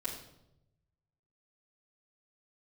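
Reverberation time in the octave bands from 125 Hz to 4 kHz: 1.6 s, 1.0 s, 0.95 s, 0.75 s, 0.60 s, 0.60 s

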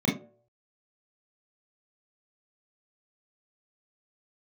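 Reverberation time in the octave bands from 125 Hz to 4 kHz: 0.40 s, 0.40 s, 0.60 s, 0.45 s, 0.20 s, 0.20 s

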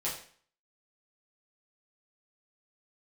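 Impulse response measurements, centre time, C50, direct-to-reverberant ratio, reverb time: 33 ms, 6.0 dB, -7.5 dB, 0.50 s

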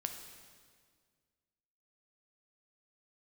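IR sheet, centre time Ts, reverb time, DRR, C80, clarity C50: 33 ms, 1.9 s, 5.0 dB, 8.0 dB, 6.5 dB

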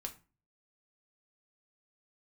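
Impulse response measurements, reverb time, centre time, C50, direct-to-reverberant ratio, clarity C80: 0.35 s, 8 ms, 14.5 dB, 3.5 dB, 20.0 dB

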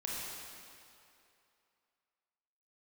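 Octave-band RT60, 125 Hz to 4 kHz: 2.2 s, 2.3 s, 2.7 s, 2.7 s, 2.5 s, 2.2 s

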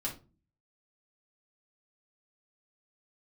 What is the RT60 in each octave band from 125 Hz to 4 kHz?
0.70 s, 0.60 s, 0.40 s, 0.30 s, 0.25 s, 0.25 s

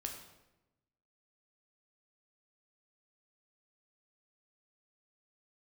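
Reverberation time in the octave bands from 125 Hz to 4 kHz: 1.4 s, 1.2 s, 1.1 s, 0.90 s, 0.85 s, 0.70 s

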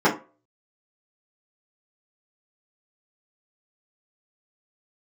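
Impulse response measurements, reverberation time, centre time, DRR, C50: 0.35 s, 20 ms, -9.0 dB, 11.5 dB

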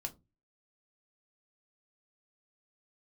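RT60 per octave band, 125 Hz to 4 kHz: 0.45 s, 0.35 s, 0.30 s, 0.20 s, 0.15 s, 0.15 s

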